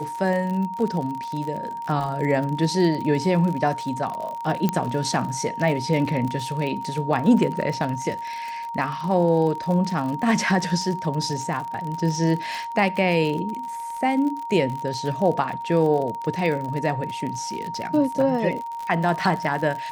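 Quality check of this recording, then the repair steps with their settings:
crackle 47/s -28 dBFS
tone 930 Hz -29 dBFS
4.69 pop -8 dBFS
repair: de-click; notch 930 Hz, Q 30

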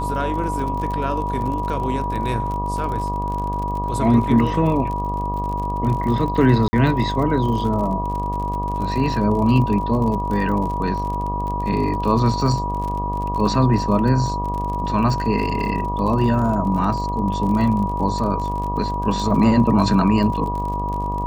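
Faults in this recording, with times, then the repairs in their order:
buzz 50 Hz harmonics 24 -26 dBFS
crackle 43/s -27 dBFS
tone 970 Hz -24 dBFS
6.68–6.73 gap 50 ms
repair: de-click; de-hum 50 Hz, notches 24; notch 970 Hz, Q 30; interpolate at 6.68, 50 ms

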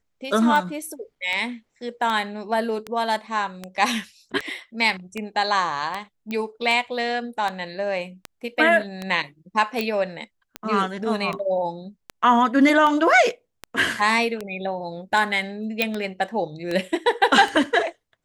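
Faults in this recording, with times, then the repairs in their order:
tick 78 rpm
6.31 pop -17 dBFS
9.81 pop -11 dBFS
15.82 pop -7 dBFS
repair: de-click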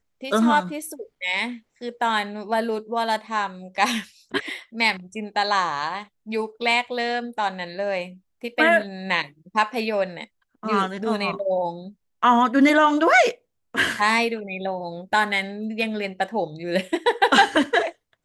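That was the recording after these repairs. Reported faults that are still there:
9.81 pop

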